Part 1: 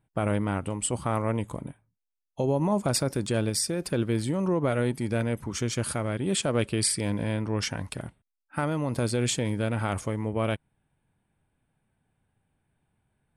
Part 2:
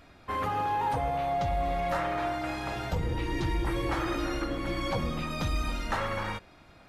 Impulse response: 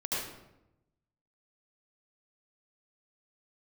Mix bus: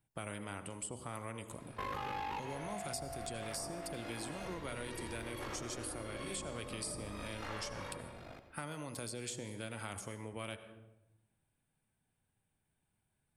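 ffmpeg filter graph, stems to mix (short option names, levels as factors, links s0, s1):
-filter_complex "[0:a]highshelf=f=3500:g=11,bandreject=f=63.47:t=h:w=4,bandreject=f=126.94:t=h:w=4,bandreject=f=190.41:t=h:w=4,bandreject=f=253.88:t=h:w=4,bandreject=f=317.35:t=h:w=4,bandreject=f=380.82:t=h:w=4,bandreject=f=444.29:t=h:w=4,bandreject=f=507.76:t=h:w=4,bandreject=f=571.23:t=h:w=4,bandreject=f=634.7:t=h:w=4,bandreject=f=698.17:t=h:w=4,bandreject=f=761.64:t=h:w=4,bandreject=f=825.11:t=h:w=4,bandreject=f=888.58:t=h:w=4,bandreject=f=952.05:t=h:w=4,bandreject=f=1015.52:t=h:w=4,bandreject=f=1078.99:t=h:w=4,bandreject=f=1142.46:t=h:w=4,bandreject=f=1205.93:t=h:w=4,bandreject=f=1269.4:t=h:w=4,bandreject=f=1332.87:t=h:w=4,bandreject=f=1396.34:t=h:w=4,bandreject=f=1459.81:t=h:w=4,bandreject=f=1523.28:t=h:w=4,bandreject=f=1586.75:t=h:w=4,bandreject=f=1650.22:t=h:w=4,bandreject=f=1713.69:t=h:w=4,bandreject=f=1777.16:t=h:w=4,bandreject=f=1840.63:t=h:w=4,volume=0.316,asplit=3[s0][s1][s2];[s1]volume=0.119[s3];[1:a]equalizer=f=530:w=1.5:g=5.5,aeval=exprs='val(0)*sin(2*PI*25*n/s)':c=same,asoftclip=type=tanh:threshold=0.0355,adelay=1500,volume=1.41,asplit=2[s4][s5];[s5]volume=0.224[s6];[s2]apad=whole_len=369995[s7];[s4][s7]sidechaincompress=threshold=0.00224:ratio=8:attack=16:release=198[s8];[2:a]atrim=start_sample=2205[s9];[s3][s6]amix=inputs=2:normalize=0[s10];[s10][s9]afir=irnorm=-1:irlink=0[s11];[s0][s8][s11]amix=inputs=3:normalize=0,acrossover=split=310|1300[s12][s13][s14];[s12]acompressor=threshold=0.00398:ratio=4[s15];[s13]acompressor=threshold=0.00501:ratio=4[s16];[s14]acompressor=threshold=0.00631:ratio=4[s17];[s15][s16][s17]amix=inputs=3:normalize=0"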